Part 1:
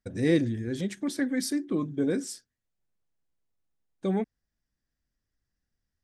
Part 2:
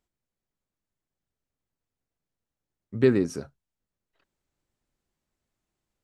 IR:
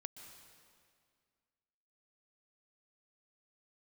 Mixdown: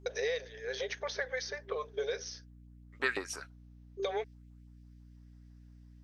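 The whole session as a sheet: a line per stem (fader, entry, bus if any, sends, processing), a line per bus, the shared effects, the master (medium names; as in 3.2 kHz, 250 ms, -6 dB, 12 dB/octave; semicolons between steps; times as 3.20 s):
+0.5 dB, 0.00 s, no send, gate with hold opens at -37 dBFS; FFT band-pass 390–6500 Hz; three bands compressed up and down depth 100%
0.0 dB, 0.00 s, no send, LFO high-pass saw up 6 Hz 720–3200 Hz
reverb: none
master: hum 60 Hz, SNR 15 dB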